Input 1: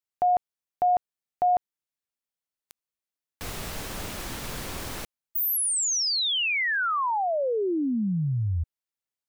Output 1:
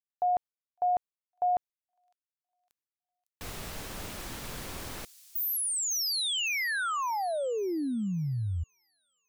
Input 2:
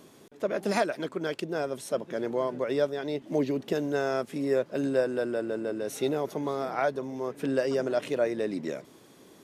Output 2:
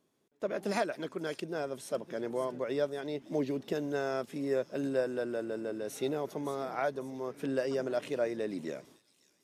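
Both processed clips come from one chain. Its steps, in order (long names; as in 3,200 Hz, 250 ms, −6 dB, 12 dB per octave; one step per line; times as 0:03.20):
noise gate with hold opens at −41 dBFS, closes at −49 dBFS, hold 80 ms, range −17 dB
delay with a high-pass on its return 556 ms, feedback 41%, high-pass 5,500 Hz, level −9 dB
level −5 dB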